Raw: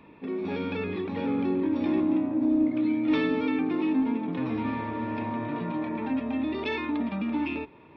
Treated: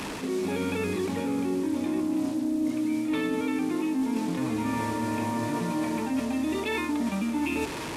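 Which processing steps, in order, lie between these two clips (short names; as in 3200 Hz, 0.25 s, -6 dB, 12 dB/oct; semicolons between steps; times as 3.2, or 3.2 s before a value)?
delta modulation 64 kbps, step -37 dBFS; reverse; compressor 6:1, threshold -34 dBFS, peak gain reduction 13.5 dB; reverse; gain +8.5 dB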